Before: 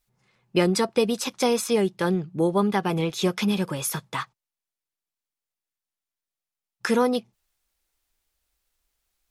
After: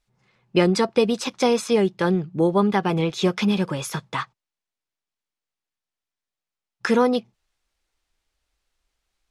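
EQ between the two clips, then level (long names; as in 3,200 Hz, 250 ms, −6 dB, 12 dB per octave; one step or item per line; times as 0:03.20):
high-frequency loss of the air 62 metres
+3.0 dB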